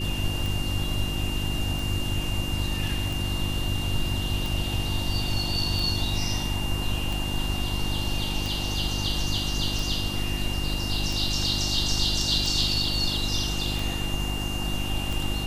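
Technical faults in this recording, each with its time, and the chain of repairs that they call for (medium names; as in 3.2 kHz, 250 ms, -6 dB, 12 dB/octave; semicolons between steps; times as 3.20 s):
hum 50 Hz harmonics 7 -31 dBFS
tick 45 rpm
whine 2.8 kHz -33 dBFS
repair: de-click; band-stop 2.8 kHz, Q 30; de-hum 50 Hz, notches 7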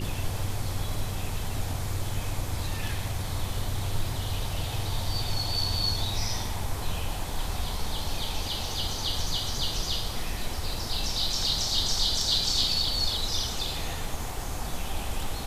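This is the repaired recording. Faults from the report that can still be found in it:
nothing left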